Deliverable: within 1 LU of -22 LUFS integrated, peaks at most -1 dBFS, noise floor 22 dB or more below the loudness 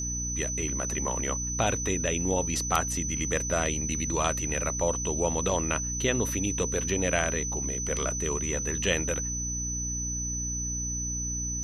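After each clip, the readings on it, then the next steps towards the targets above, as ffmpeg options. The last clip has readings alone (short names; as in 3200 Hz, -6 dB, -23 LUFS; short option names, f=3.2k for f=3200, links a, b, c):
hum 60 Hz; harmonics up to 300 Hz; hum level -33 dBFS; steady tone 6000 Hz; tone level -31 dBFS; loudness -28.0 LUFS; peak -8.5 dBFS; loudness target -22.0 LUFS
-> -af "bandreject=f=60:t=h:w=6,bandreject=f=120:t=h:w=6,bandreject=f=180:t=h:w=6,bandreject=f=240:t=h:w=6,bandreject=f=300:t=h:w=6"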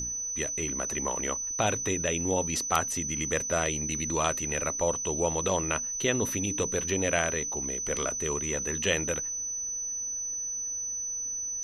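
hum none; steady tone 6000 Hz; tone level -31 dBFS
-> -af "bandreject=f=6k:w=30"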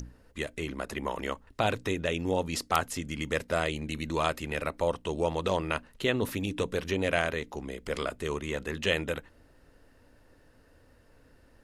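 steady tone none; loudness -31.5 LUFS; peak -8.0 dBFS; loudness target -22.0 LUFS
-> -af "volume=9.5dB,alimiter=limit=-1dB:level=0:latency=1"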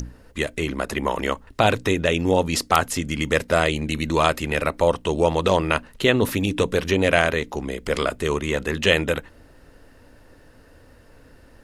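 loudness -22.0 LUFS; peak -1.0 dBFS; noise floor -51 dBFS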